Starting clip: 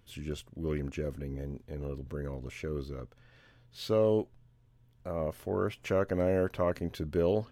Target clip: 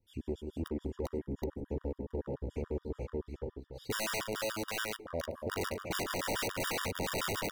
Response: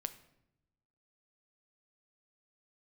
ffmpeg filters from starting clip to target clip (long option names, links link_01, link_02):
-filter_complex "[0:a]equalizer=frequency=150:width_type=o:width=0.32:gain=-14,afwtdn=0.0178,asplit=2[link_01][link_02];[link_02]acrusher=bits=3:mix=0:aa=0.000001,volume=-5dB[link_03];[link_01][link_03]amix=inputs=2:normalize=0,acontrast=22,aecho=1:1:112|178|434|447|772:0.188|0.316|0.188|0.708|0.376,asplit=2[link_04][link_05];[1:a]atrim=start_sample=2205,atrim=end_sample=4410,asetrate=39690,aresample=44100[link_06];[link_05][link_06]afir=irnorm=-1:irlink=0,volume=1dB[link_07];[link_04][link_07]amix=inputs=2:normalize=0,adynamicequalizer=threshold=0.0158:dfrequency=2300:dqfactor=1.5:tfrequency=2300:tqfactor=1.5:attack=5:release=100:ratio=0.375:range=2.5:mode=boostabove:tftype=bell,aeval=exprs='(mod(4.73*val(0)+1,2)-1)/4.73':channel_layout=same,acompressor=threshold=-26dB:ratio=5,asoftclip=type=hard:threshold=-23.5dB,afftfilt=real='re*gt(sin(2*PI*7*pts/sr)*(1-2*mod(floor(b*sr/1024/950),2)),0)':imag='im*gt(sin(2*PI*7*pts/sr)*(1-2*mod(floor(b*sr/1024/950),2)),0)':win_size=1024:overlap=0.75,volume=-4.5dB"